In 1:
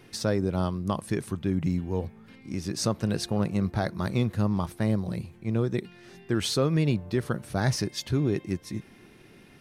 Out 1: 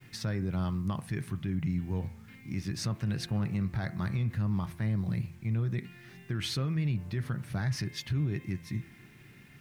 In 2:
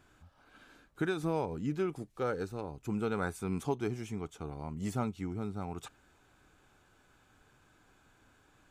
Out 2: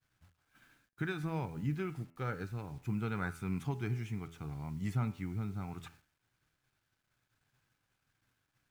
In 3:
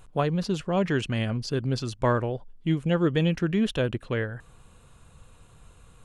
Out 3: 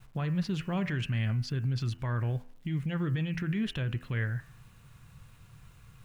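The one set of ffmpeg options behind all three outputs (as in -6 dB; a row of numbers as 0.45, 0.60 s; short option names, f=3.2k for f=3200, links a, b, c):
-af "equalizer=f=125:t=o:w=1:g=11,equalizer=f=500:t=o:w=1:g=-6,equalizer=f=2k:t=o:w=1:g=8,equalizer=f=8k:t=o:w=1:g=-5,acrusher=bits=9:mix=0:aa=0.000001,alimiter=limit=-18.5dB:level=0:latency=1:release=60,bandreject=f=83.27:t=h:w=4,bandreject=f=166.54:t=h:w=4,bandreject=f=249.81:t=h:w=4,bandreject=f=333.08:t=h:w=4,bandreject=f=416.35:t=h:w=4,bandreject=f=499.62:t=h:w=4,bandreject=f=582.89:t=h:w=4,bandreject=f=666.16:t=h:w=4,bandreject=f=749.43:t=h:w=4,bandreject=f=832.7:t=h:w=4,bandreject=f=915.97:t=h:w=4,bandreject=f=999.24:t=h:w=4,bandreject=f=1.08251k:t=h:w=4,bandreject=f=1.16578k:t=h:w=4,bandreject=f=1.24905k:t=h:w=4,bandreject=f=1.33232k:t=h:w=4,bandreject=f=1.41559k:t=h:w=4,bandreject=f=1.49886k:t=h:w=4,bandreject=f=1.58213k:t=h:w=4,bandreject=f=1.6654k:t=h:w=4,bandreject=f=1.74867k:t=h:w=4,bandreject=f=1.83194k:t=h:w=4,bandreject=f=1.91521k:t=h:w=4,bandreject=f=1.99848k:t=h:w=4,bandreject=f=2.08175k:t=h:w=4,bandreject=f=2.16502k:t=h:w=4,bandreject=f=2.24829k:t=h:w=4,bandreject=f=2.33156k:t=h:w=4,bandreject=f=2.41483k:t=h:w=4,bandreject=f=2.4981k:t=h:w=4,bandreject=f=2.58137k:t=h:w=4,bandreject=f=2.66464k:t=h:w=4,bandreject=f=2.74791k:t=h:w=4,bandreject=f=2.83118k:t=h:w=4,bandreject=f=2.91445k:t=h:w=4,bandreject=f=2.99772k:t=h:w=4,agate=range=-33dB:threshold=-49dB:ratio=3:detection=peak,volume=-5dB"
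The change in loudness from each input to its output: -5.0, -2.0, -5.5 LU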